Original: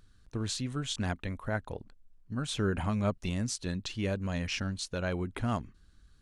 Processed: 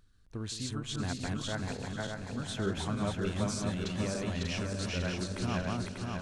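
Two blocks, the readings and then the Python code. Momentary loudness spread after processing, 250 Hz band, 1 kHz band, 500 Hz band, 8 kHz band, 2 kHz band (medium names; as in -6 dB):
5 LU, 0.0 dB, -0.5 dB, -0.5 dB, -0.5 dB, -0.5 dB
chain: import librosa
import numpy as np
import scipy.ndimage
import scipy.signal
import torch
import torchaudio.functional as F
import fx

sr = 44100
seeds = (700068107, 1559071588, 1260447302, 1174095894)

y = fx.reverse_delay_fb(x, sr, ms=296, feedback_pct=71, wet_db=-1)
y = fx.echo_split(y, sr, split_hz=670.0, low_ms=166, high_ms=492, feedback_pct=52, wet_db=-13.0)
y = fx.end_taper(y, sr, db_per_s=160.0)
y = y * 10.0 ** (-4.5 / 20.0)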